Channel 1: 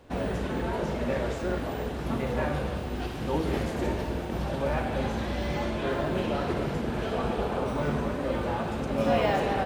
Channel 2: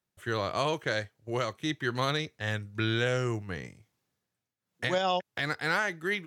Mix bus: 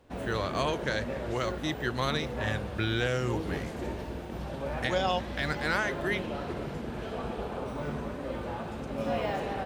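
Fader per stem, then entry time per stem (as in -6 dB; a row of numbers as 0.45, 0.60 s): -6.5, -1.0 dB; 0.00, 0.00 s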